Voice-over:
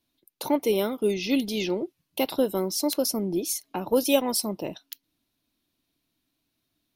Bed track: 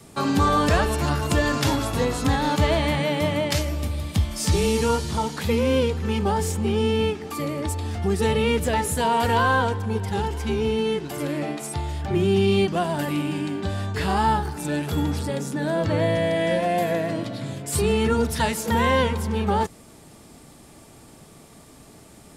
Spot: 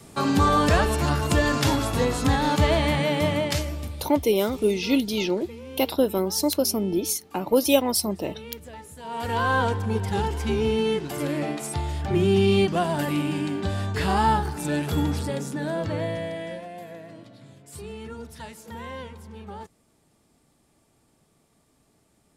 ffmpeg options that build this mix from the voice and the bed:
ffmpeg -i stem1.wav -i stem2.wav -filter_complex "[0:a]adelay=3600,volume=2.5dB[link_01];[1:a]volume=19dB,afade=type=out:start_time=3.3:duration=0.95:silence=0.112202,afade=type=in:start_time=9.02:duration=0.69:silence=0.112202,afade=type=out:start_time=14.99:duration=1.71:silence=0.141254[link_02];[link_01][link_02]amix=inputs=2:normalize=0" out.wav

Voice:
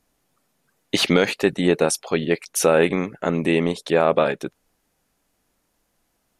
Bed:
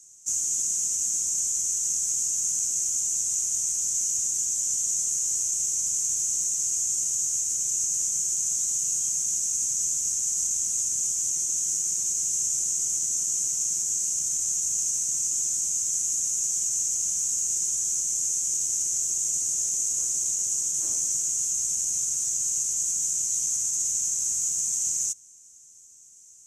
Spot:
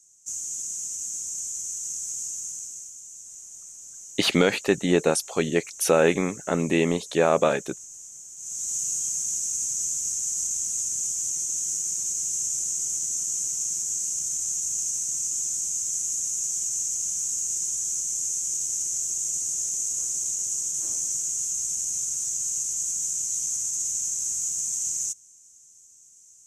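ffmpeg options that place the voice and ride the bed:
ffmpeg -i stem1.wav -i stem2.wav -filter_complex "[0:a]adelay=3250,volume=-2.5dB[link_01];[1:a]volume=9dB,afade=type=out:start_time=2.27:duration=0.68:silence=0.298538,afade=type=in:start_time=8.36:duration=0.41:silence=0.177828[link_02];[link_01][link_02]amix=inputs=2:normalize=0" out.wav

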